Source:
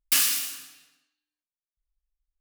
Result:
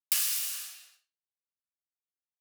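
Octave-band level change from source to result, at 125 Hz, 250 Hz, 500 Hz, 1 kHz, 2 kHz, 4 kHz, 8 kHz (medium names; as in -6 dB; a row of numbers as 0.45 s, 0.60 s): no reading, under -40 dB, under -10 dB, -10.0 dB, -9.0 dB, -7.0 dB, -5.0 dB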